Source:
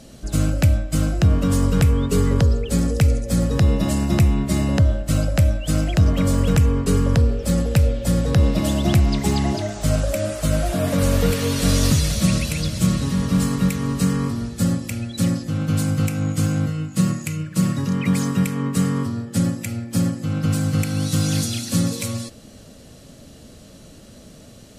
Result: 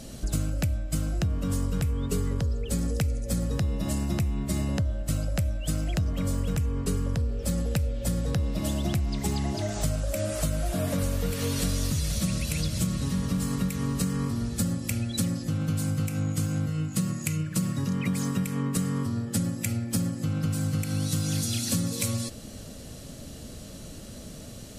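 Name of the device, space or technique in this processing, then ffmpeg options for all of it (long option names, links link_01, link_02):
ASMR close-microphone chain: -af "lowshelf=frequency=120:gain=5,acompressor=threshold=-25dB:ratio=6,highshelf=frequency=6300:gain=6"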